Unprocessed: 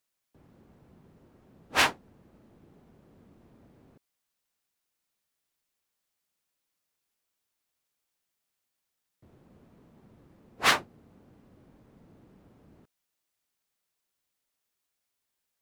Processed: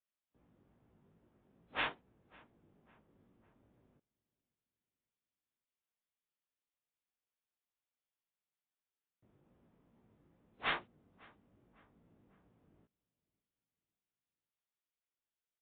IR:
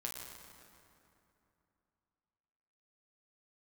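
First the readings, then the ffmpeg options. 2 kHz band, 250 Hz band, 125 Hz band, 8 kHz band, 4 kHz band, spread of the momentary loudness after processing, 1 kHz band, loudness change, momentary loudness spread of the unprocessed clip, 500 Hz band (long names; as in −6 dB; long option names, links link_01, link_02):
−12.0 dB, −12.5 dB, −12.0 dB, below −35 dB, −14.5 dB, 4 LU, −12.5 dB, −13.0 dB, 5 LU, −12.0 dB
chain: -filter_complex "[0:a]aeval=exprs='0.355*(cos(1*acos(clip(val(0)/0.355,-1,1)))-cos(1*PI/2))+0.0178*(cos(2*acos(clip(val(0)/0.355,-1,1)))-cos(2*PI/2))':channel_layout=same,flanger=delay=16.5:depth=4.4:speed=2.4,asplit=2[link_01][link_02];[link_02]adelay=551,lowpass=frequency=1900:poles=1,volume=-23.5dB,asplit=2[link_03][link_04];[link_04]adelay=551,lowpass=frequency=1900:poles=1,volume=0.51,asplit=2[link_05][link_06];[link_06]adelay=551,lowpass=frequency=1900:poles=1,volume=0.51[link_07];[link_03][link_05][link_07]amix=inputs=3:normalize=0[link_08];[link_01][link_08]amix=inputs=2:normalize=0,volume=-9dB" -ar 8000 -c:a libmp3lame -b:a 32k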